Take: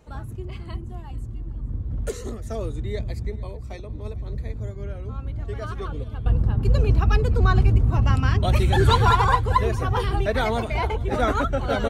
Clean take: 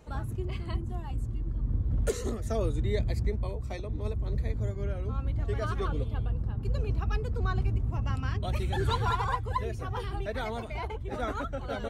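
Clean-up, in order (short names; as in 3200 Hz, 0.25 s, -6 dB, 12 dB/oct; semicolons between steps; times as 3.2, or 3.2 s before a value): inverse comb 0.444 s -20.5 dB; gain correction -11 dB, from 6.26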